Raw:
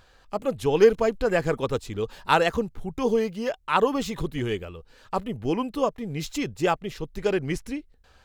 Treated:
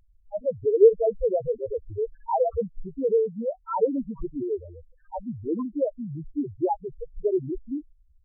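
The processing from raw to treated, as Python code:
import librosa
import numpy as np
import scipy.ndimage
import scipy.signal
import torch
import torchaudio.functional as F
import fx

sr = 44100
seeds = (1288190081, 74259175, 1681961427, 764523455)

y = scipy.signal.sosfilt(scipy.signal.cheby2(4, 50, 5500.0, 'lowpass', fs=sr, output='sos'), x)
y = fx.peak_eq(y, sr, hz=160.0, db=-4.5, octaves=1.0)
y = fx.spec_topn(y, sr, count=2)
y = y * 10.0 ** (3.5 / 20.0)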